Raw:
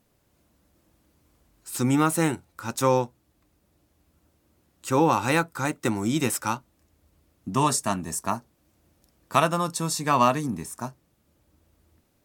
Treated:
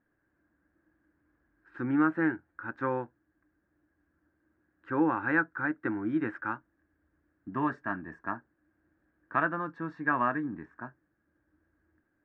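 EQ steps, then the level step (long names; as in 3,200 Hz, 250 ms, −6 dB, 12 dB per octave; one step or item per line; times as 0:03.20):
transistor ladder low-pass 1,700 Hz, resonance 85%
parametric band 310 Hz +12.5 dB 0.37 octaves
0.0 dB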